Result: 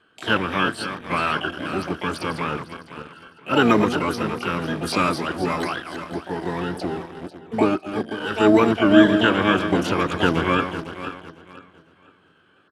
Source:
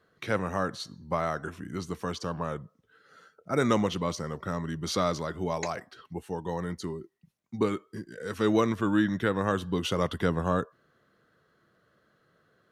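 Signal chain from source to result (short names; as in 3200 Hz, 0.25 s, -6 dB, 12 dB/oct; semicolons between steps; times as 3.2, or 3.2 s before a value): regenerating reverse delay 0.252 s, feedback 57%, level -9 dB; in parallel at -8.5 dB: requantised 6-bit, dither none; on the sum: EQ curve 170 Hz 0 dB, 310 Hz +9 dB, 620 Hz -5 dB, 990 Hz +2 dB, 1600 Hz +11 dB, 2300 Hz -10 dB, 5100 Hz +4 dB, 7500 Hz -21 dB; harmoniser -5 st -15 dB, +12 st -6 dB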